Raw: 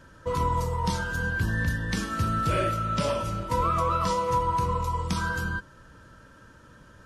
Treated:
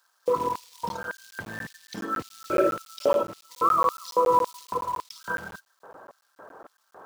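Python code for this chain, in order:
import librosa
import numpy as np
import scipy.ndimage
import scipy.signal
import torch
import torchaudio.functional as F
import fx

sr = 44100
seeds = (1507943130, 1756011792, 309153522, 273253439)

p1 = fx.envelope_sharpen(x, sr, power=2.0)
p2 = fx.dmg_noise_band(p1, sr, seeds[0], low_hz=390.0, high_hz=1200.0, level_db=-54.0)
p3 = fx.quant_float(p2, sr, bits=2)
p4 = p2 + (p3 * librosa.db_to_amplitude(-3.0))
p5 = fx.filter_lfo_highpass(p4, sr, shape='square', hz=1.8, low_hz=430.0, high_hz=4200.0, q=1.4)
y = fx.buffer_crackle(p5, sr, first_s=0.89, period_s=0.14, block=512, kind='zero')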